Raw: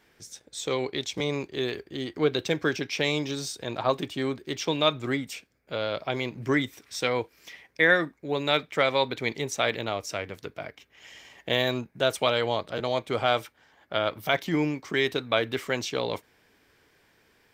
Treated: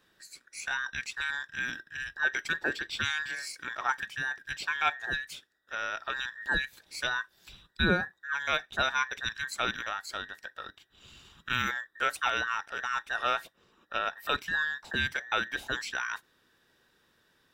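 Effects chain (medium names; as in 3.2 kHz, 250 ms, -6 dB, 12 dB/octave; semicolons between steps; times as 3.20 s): every band turned upside down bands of 2 kHz; trim -5 dB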